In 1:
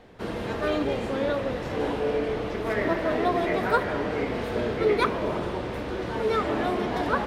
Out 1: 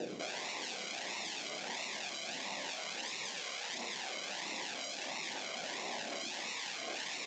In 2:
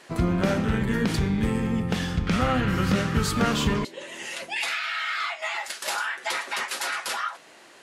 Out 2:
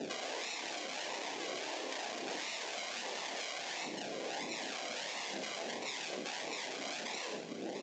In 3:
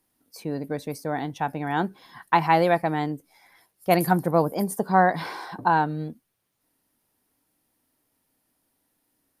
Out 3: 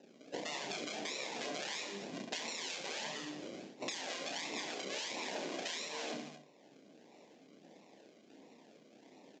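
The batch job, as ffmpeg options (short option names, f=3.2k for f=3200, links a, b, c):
-filter_complex "[0:a]bandreject=f=50:t=h:w=6,bandreject=f=100:t=h:w=6,bandreject=f=150:t=h:w=6,bandreject=f=200:t=h:w=6,bandreject=f=250:t=h:w=6,bandreject=f=300:t=h:w=6,bandreject=f=350:t=h:w=6,bandreject=f=400:t=h:w=6,acrossover=split=630|1500[a][b][c];[a]acompressor=threshold=-34dB:ratio=4[d];[b]acompressor=threshold=-28dB:ratio=4[e];[c]acompressor=threshold=-34dB:ratio=4[f];[d][e][f]amix=inputs=3:normalize=0,acrusher=samples=39:mix=1:aa=0.000001:lfo=1:lforange=23.4:lforate=1.5,asoftclip=type=tanh:threshold=-25dB,afftfilt=real='re*lt(hypot(re,im),0.0447)':imag='im*lt(hypot(re,im),0.0447)':win_size=1024:overlap=0.75,equalizer=f=1.3k:t=o:w=0.55:g=-13.5,aecho=1:1:30|67.5|114.4|173|246.2:0.631|0.398|0.251|0.158|0.1,acompressor=threshold=-51dB:ratio=6,aresample=16000,aresample=44100,highpass=f=210:w=0.5412,highpass=f=210:w=1.3066,aphaser=in_gain=1:out_gain=1:delay=2.1:decay=0.23:speed=1.3:type=triangular,volume=13.5dB"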